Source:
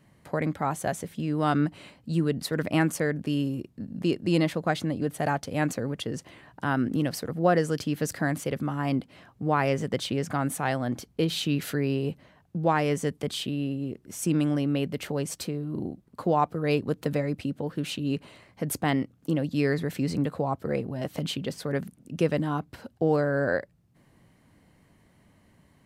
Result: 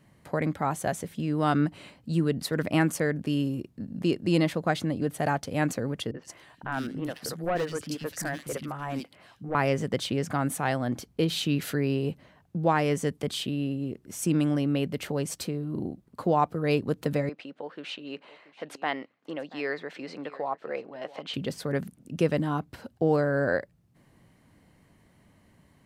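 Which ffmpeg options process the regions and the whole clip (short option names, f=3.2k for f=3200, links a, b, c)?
-filter_complex "[0:a]asettb=1/sr,asplit=3[a][b][c];[a]atrim=end=6.114[d];[b]atrim=start=6.11:end=9.55,asetpts=PTS-STARTPTS,afade=t=in:d=0.004:c=qsin,afade=t=out:st=3.436:d=0.004:c=qsin,lowshelf=f=320:g=-8,asoftclip=type=hard:threshold=-23dB,acrossover=split=250|2600[e][f][g];[f]adelay=30[h];[g]adelay=110[i];[e][h][i]amix=inputs=3:normalize=0,atrim=end_sample=151704[j];[c]atrim=start=9.546[k];[d][j]acrossfade=d=0.004:c1=hsin:c2=qsin[l];[l][k]acrossfade=d=0.004:c1=qsin:c2=hsin,asettb=1/sr,asplit=3[m][n][o];[m]atrim=end=17.294[p];[n]atrim=start=17.29:end=21.34,asetpts=PTS-STARTPTS,afade=t=in:d=0.004:c=qsin,afade=t=out:st=4.046:d=0.004:c=qsin,highpass=540,lowpass=3.5k,aecho=1:1:682:0.112,atrim=end_sample=178605[q];[o]atrim=start=21.336[r];[p][q]acrossfade=d=0.004:c1=hsin:c2=qsin[s];[s][r]acrossfade=d=0.004:c1=qsin:c2=hsin"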